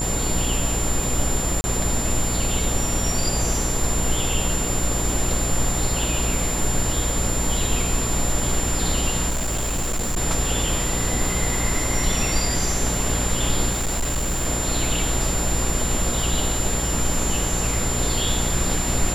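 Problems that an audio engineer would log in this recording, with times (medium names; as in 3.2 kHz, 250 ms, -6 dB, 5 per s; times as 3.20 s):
buzz 60 Hz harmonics 19 -27 dBFS
crackle 33 per s -28 dBFS
whine 7.2 kHz -26 dBFS
1.61–1.64 s: dropout 30 ms
9.29–10.18 s: clipped -20.5 dBFS
13.71–14.46 s: clipped -19.5 dBFS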